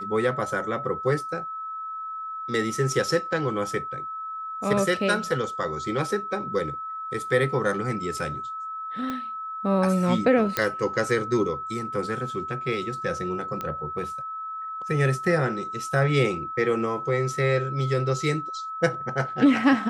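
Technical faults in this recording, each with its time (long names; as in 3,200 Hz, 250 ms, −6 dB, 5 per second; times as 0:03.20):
whistle 1,300 Hz −31 dBFS
0:09.10: click −17 dBFS
0:10.57: click −7 dBFS
0:13.61: click −17 dBFS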